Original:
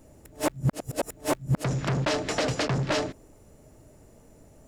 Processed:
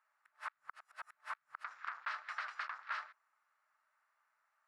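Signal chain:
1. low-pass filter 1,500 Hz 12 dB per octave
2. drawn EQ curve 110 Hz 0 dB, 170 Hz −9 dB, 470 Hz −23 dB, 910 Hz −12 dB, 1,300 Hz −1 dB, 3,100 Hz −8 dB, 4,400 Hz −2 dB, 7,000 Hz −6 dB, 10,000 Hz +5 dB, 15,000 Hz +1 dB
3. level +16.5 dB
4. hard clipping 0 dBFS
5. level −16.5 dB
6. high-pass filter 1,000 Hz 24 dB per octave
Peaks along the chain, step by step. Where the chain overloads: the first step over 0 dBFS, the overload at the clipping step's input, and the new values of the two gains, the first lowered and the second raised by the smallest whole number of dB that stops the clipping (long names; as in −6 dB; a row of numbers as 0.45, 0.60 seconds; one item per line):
−16.0, −19.5, −3.0, −3.0, −19.5, −27.0 dBFS
no step passes full scale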